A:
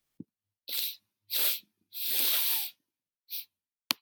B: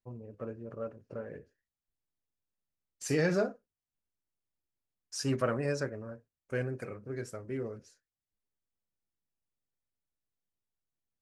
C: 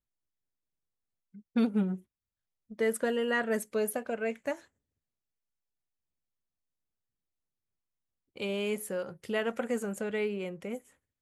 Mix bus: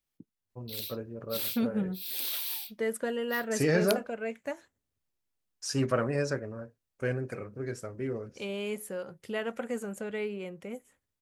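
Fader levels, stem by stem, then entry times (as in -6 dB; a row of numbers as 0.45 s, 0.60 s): -6.5 dB, +2.5 dB, -2.5 dB; 0.00 s, 0.50 s, 0.00 s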